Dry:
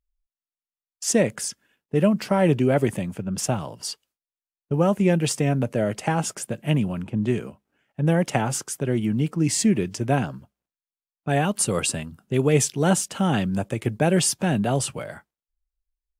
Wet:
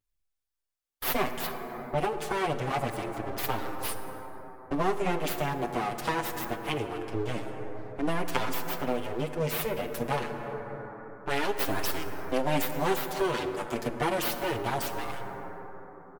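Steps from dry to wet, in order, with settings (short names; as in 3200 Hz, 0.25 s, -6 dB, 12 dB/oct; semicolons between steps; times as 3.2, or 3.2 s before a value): full-wave rectifier; 1.46–1.98 high shelf 3900 Hz -12 dB; plate-style reverb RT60 4 s, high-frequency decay 0.3×, DRR 8 dB; compressor 2:1, threshold -28 dBFS, peak gain reduction 9.5 dB; low shelf 130 Hz -11.5 dB; endless flanger 7.1 ms -0.26 Hz; gain +7 dB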